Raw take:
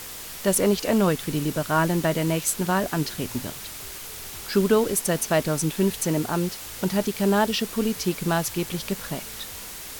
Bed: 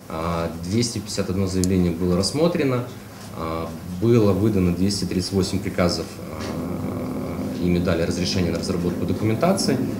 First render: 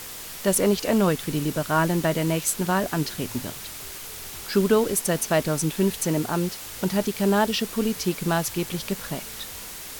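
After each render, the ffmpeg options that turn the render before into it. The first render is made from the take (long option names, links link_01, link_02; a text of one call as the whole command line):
ffmpeg -i in.wav -af "bandreject=frequency=50:width_type=h:width=4,bandreject=frequency=100:width_type=h:width=4" out.wav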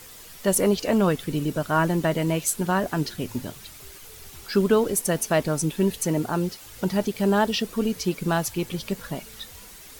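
ffmpeg -i in.wav -af "afftdn=noise_reduction=9:noise_floor=-38" out.wav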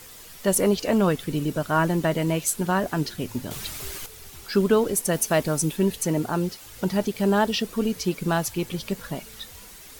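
ffmpeg -i in.wav -filter_complex "[0:a]asettb=1/sr,asplit=3[link_01][link_02][link_03];[link_01]atrim=end=5.134[link_04];[link_02]atrim=start=5.13:end=5.77,asetpts=PTS-STARTPTS,afade=type=in:duration=0.004:curve=qsin,afade=type=out:start_time=0.636:duration=0.004:curve=qsin,highshelf=frequency=6400:gain=5[link_05];[link_03]atrim=start=5.766[link_06];[link_04][link_05]acrossfade=duration=0.004:curve1=hsin:curve2=qsin[link_07];[link_07][link_06]acrossfade=duration=0.004:curve1=qsin:curve2=hsin,asplit=3[link_08][link_09][link_10];[link_08]atrim=end=3.512[link_11];[link_09]atrim=start=3.508:end=4.062,asetpts=PTS-STARTPTS,volume=9dB[link_12];[link_10]atrim=start=4.058[link_13];[link_11][link_12]acrossfade=duration=0.004:curve1=hsin:curve2=hsin[link_14];[link_14][link_13]acrossfade=duration=0.004:curve1=hsin:curve2=hsin" out.wav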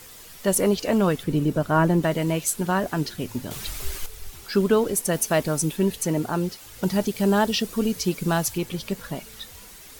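ffmpeg -i in.wav -filter_complex "[0:a]asettb=1/sr,asplit=3[link_01][link_02][link_03];[link_01]atrim=end=1.234[link_04];[link_02]atrim=start=1.23:end=2.03,asetpts=PTS-STARTPTS,afade=type=in:duration=0.004:curve=qsin,afade=type=out:start_time=0.796:duration=0.004:curve=qsin,tiltshelf=frequency=1300:gain=4[link_05];[link_03]atrim=start=2.026[link_06];[link_04][link_05]acrossfade=duration=0.004:curve1=hsin:curve2=qsin[link_07];[link_07][link_06]acrossfade=duration=0.004:curve1=qsin:curve2=hsin,asplit=3[link_08][link_09][link_10];[link_08]afade=type=out:start_time=3.66:duration=0.02[link_11];[link_09]asubboost=boost=5.5:cutoff=62,afade=type=in:start_time=3.66:duration=0.02,afade=type=out:start_time=4.33:duration=0.02[link_12];[link_10]afade=type=in:start_time=4.33:duration=0.02[link_13];[link_11][link_12][link_13]amix=inputs=3:normalize=0,asettb=1/sr,asplit=3[link_14][link_15][link_16];[link_14]atrim=end=6.834[link_17];[link_15]atrim=start=6.83:end=8.58,asetpts=PTS-STARTPTS,afade=type=in:duration=0.004:curve=qsin,afade=type=out:start_time=1.746:duration=0.004:curve=qsin,bass=frequency=250:gain=2,treble=frequency=4000:gain=4[link_18];[link_16]atrim=start=8.576[link_19];[link_17][link_18]acrossfade=duration=0.004:curve1=hsin:curve2=qsin[link_20];[link_20][link_19]acrossfade=duration=0.004:curve1=qsin:curve2=hsin" out.wav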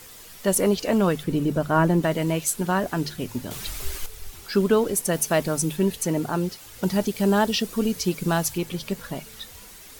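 ffmpeg -i in.wav -af "bandreject=frequency=50:width_type=h:width=6,bandreject=frequency=100:width_type=h:width=6,bandreject=frequency=150:width_type=h:width=6" out.wav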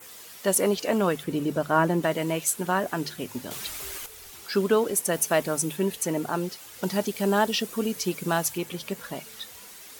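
ffmpeg -i in.wav -af "highpass=frequency=320:poles=1,adynamicequalizer=threshold=0.00447:dfrequency=4600:dqfactor=1.7:tfrequency=4600:tqfactor=1.7:attack=5:release=100:ratio=0.375:range=2:mode=cutabove:tftype=bell" out.wav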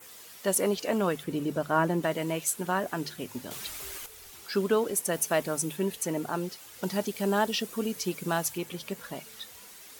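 ffmpeg -i in.wav -af "volume=-3.5dB" out.wav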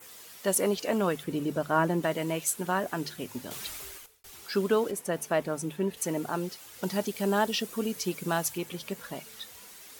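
ffmpeg -i in.wav -filter_complex "[0:a]asettb=1/sr,asplit=3[link_01][link_02][link_03];[link_01]atrim=end=4.914[link_04];[link_02]atrim=start=4.91:end=5.97,asetpts=PTS-STARTPTS,afade=type=in:duration=0.004:curve=qsin,afade=type=out:start_time=1.056:duration=0.004:curve=qsin,highshelf=frequency=3500:gain=-10.5[link_05];[link_03]atrim=start=5.966[link_06];[link_04][link_05]acrossfade=duration=0.004:curve1=hsin:curve2=qsin[link_07];[link_07][link_06]acrossfade=duration=0.004:curve1=qsin:curve2=hsin,asplit=2[link_08][link_09];[link_08]atrim=end=4.24,asetpts=PTS-STARTPTS,afade=type=out:start_time=3.72:duration=0.52[link_10];[link_09]atrim=start=4.24,asetpts=PTS-STARTPTS,afade=type=in:duration=0.004:curve=hsin[link_11];[link_10][link_11]concat=n=2:v=0:a=1" out.wav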